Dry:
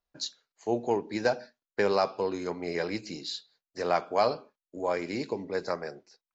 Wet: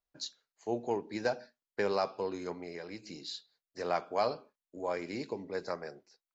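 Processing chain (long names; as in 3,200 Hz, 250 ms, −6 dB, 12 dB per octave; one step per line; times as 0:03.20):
0:02.55–0:03.28: downward compressor 6 to 1, threshold −34 dBFS, peak gain reduction 8.5 dB
level −5.5 dB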